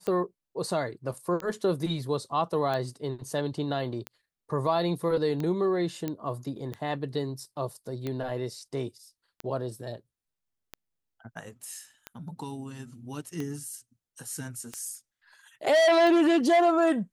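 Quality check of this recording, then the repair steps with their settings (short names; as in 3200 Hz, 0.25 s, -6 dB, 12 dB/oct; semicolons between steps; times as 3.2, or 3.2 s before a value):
tick 45 rpm -20 dBFS
6.08 pop -18 dBFS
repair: de-click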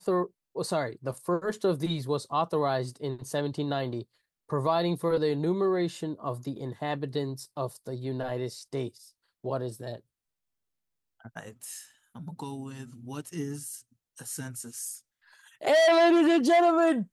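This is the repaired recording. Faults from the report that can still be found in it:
none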